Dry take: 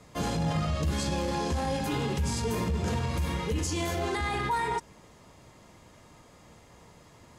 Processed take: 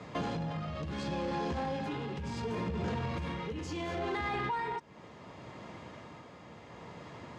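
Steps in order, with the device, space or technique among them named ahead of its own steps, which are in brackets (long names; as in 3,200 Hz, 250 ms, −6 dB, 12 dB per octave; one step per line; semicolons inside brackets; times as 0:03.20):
AM radio (band-pass filter 110–3,400 Hz; downward compressor 4 to 1, threshold −40 dBFS, peak gain reduction 12.5 dB; soft clipping −34 dBFS, distortion −20 dB; amplitude tremolo 0.7 Hz, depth 40%)
level +8.5 dB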